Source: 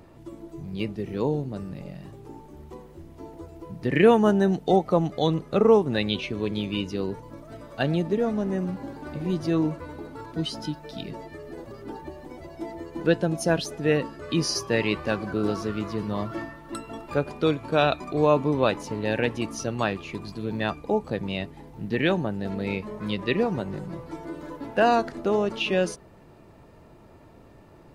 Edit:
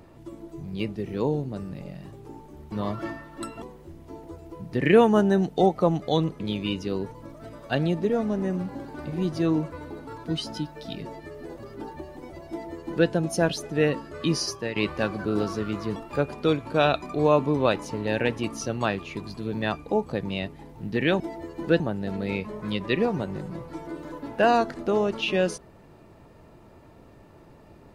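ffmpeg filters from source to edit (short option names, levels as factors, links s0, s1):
-filter_complex "[0:a]asplit=8[s0][s1][s2][s3][s4][s5][s6][s7];[s0]atrim=end=2.722[s8];[s1]atrim=start=16.038:end=16.942[s9];[s2]atrim=start=2.718:end=5.502[s10];[s3]atrim=start=6.478:end=14.84,asetpts=PTS-STARTPTS,afade=t=out:st=7.932:d=0.43:silence=0.298538[s11];[s4]atrim=start=14.84:end=16.042,asetpts=PTS-STARTPTS,afade=t=in:d=0.004:c=hsin:silence=0.298538[s12];[s5]atrim=start=16.938:end=22.182[s13];[s6]atrim=start=12.568:end=13.172[s14];[s7]atrim=start=22.178[s15];[s8][s9]acrossfade=d=0.004:c1=hsin:c2=hsin[s16];[s16][s10]acrossfade=d=0.004:c1=hsin:c2=hsin[s17];[s11][s12]concat=n=2:v=0:a=1[s18];[s17][s18]acrossfade=d=0.004:c1=hsin:c2=hsin[s19];[s19][s13]acrossfade=d=0.004:c1=hsin:c2=hsin[s20];[s20][s14]acrossfade=d=0.004:c1=hsin:c2=hsin[s21];[s21][s15]acrossfade=d=0.004:c1=hsin:c2=hsin"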